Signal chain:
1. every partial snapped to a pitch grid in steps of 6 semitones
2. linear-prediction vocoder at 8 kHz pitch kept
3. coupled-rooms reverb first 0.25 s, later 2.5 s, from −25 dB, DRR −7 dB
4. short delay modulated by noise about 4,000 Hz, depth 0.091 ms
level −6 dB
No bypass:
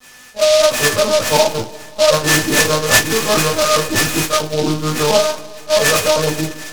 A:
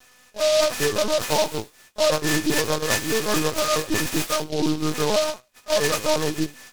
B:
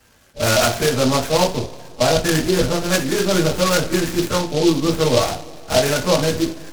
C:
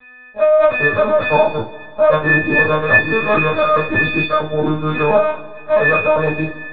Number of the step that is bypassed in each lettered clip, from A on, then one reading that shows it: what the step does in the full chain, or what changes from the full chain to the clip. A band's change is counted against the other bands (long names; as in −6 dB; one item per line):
3, 250 Hz band +4.5 dB
1, change in momentary loudness spread −3 LU
4, 4 kHz band −15.5 dB